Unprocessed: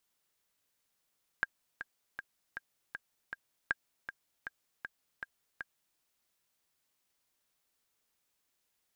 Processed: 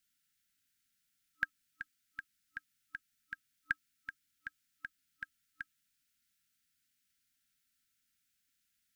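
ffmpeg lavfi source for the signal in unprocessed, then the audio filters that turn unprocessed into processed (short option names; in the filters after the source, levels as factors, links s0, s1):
-f lavfi -i "aevalsrc='pow(10,(-16-10.5*gte(mod(t,6*60/158),60/158))/20)*sin(2*PI*1610*mod(t,60/158))*exp(-6.91*mod(t,60/158)/0.03)':d=4.55:s=44100"
-af "afftfilt=real='re*(1-between(b*sr/4096,300,1300))':imag='im*(1-between(b*sr/4096,300,1300))':win_size=4096:overlap=0.75"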